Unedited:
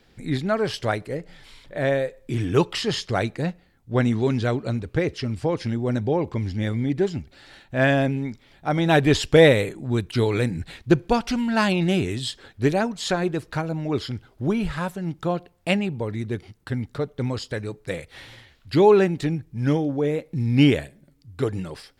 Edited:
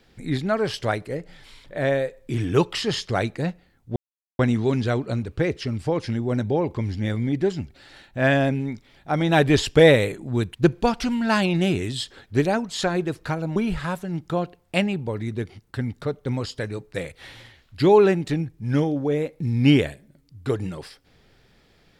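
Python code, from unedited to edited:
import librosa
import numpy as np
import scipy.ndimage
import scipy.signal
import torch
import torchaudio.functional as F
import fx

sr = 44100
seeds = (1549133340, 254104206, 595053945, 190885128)

y = fx.edit(x, sr, fx.insert_silence(at_s=3.96, length_s=0.43),
    fx.cut(start_s=10.12, length_s=0.7),
    fx.cut(start_s=13.83, length_s=0.66), tone=tone)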